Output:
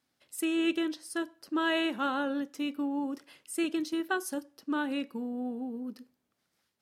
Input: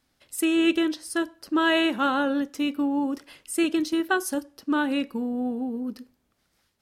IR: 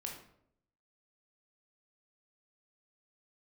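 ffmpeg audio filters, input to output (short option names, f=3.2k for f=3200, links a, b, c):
-af "highpass=120,volume=-7dB"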